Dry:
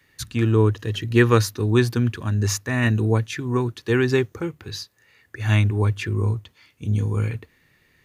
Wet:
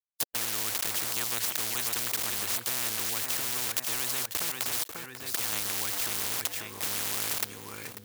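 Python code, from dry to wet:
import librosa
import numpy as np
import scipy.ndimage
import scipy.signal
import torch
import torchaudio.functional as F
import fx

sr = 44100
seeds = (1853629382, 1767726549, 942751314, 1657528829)

p1 = fx.fade_in_head(x, sr, length_s=0.81)
p2 = fx.high_shelf(p1, sr, hz=2800.0, db=-10.5)
p3 = fx.level_steps(p2, sr, step_db=16)
p4 = p2 + (p3 * librosa.db_to_amplitude(1.0))
p5 = p4 + 10.0 ** (-38.0 / 20.0) * np.sin(2.0 * np.pi * 490.0 * np.arange(len(p4)) / sr)
p6 = np.where(np.abs(p5) >= 10.0 ** (-32.0 / 20.0), p5, 0.0)
p7 = fx.riaa(p6, sr, side='recording')
p8 = p7 + fx.echo_feedback(p7, sr, ms=542, feedback_pct=25, wet_db=-16, dry=0)
p9 = fx.spectral_comp(p8, sr, ratio=10.0)
y = p9 * librosa.db_to_amplitude(-8.0)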